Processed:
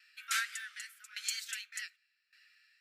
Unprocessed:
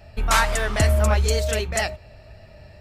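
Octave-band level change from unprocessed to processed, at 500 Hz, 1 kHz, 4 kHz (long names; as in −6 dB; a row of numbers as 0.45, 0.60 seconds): below −40 dB, −22.0 dB, −11.0 dB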